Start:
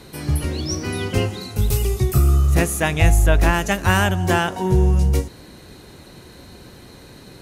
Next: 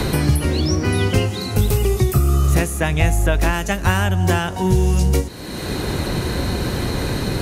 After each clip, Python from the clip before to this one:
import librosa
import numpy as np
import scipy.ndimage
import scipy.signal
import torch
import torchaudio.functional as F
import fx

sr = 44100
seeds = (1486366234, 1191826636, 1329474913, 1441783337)

y = fx.band_squash(x, sr, depth_pct=100)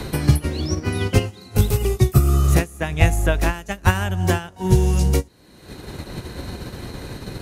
y = fx.upward_expand(x, sr, threshold_db=-27.0, expansion=2.5)
y = F.gain(torch.from_numpy(y), 4.0).numpy()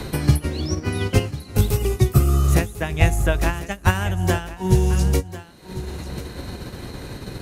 y = x + 10.0 ** (-15.0 / 20.0) * np.pad(x, (int(1046 * sr / 1000.0), 0))[:len(x)]
y = F.gain(torch.from_numpy(y), -1.0).numpy()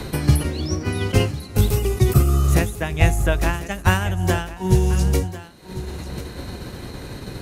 y = fx.sustainer(x, sr, db_per_s=110.0)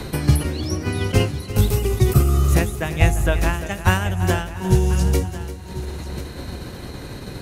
y = fx.echo_feedback(x, sr, ms=344, feedback_pct=48, wet_db=-14)